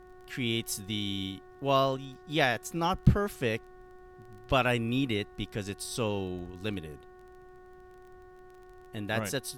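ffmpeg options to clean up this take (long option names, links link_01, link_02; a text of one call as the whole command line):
ffmpeg -i in.wav -af "adeclick=threshold=4,bandreject=frequency=367.1:width_type=h:width=4,bandreject=frequency=734.2:width_type=h:width=4,bandreject=frequency=1101.3:width_type=h:width=4,bandreject=frequency=1468.4:width_type=h:width=4,bandreject=frequency=1835.5:width_type=h:width=4,agate=range=-21dB:threshold=-44dB" out.wav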